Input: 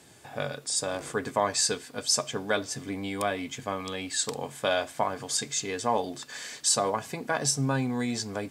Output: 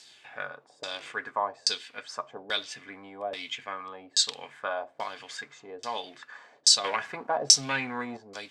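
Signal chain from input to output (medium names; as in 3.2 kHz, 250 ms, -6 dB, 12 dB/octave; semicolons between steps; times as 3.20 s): 6.84–8.17 s: waveshaping leveller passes 2; tilt EQ +4.5 dB/octave; LFO low-pass saw down 1.2 Hz 510–5100 Hz; trim -6.5 dB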